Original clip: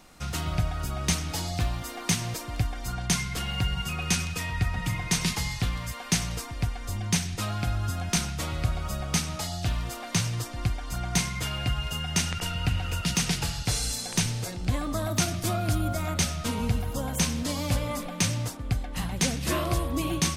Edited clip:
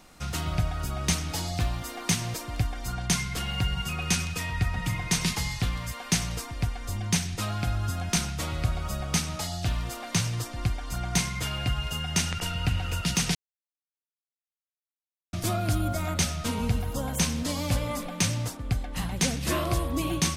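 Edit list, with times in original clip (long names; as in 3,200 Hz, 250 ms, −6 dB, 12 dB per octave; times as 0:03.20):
0:13.35–0:15.33: silence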